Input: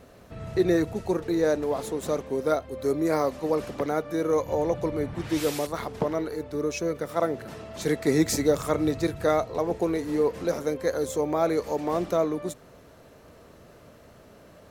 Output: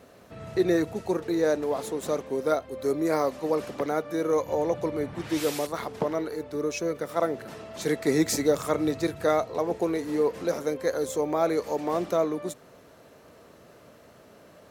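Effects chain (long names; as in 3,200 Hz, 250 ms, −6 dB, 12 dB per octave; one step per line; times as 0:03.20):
high-pass filter 170 Hz 6 dB per octave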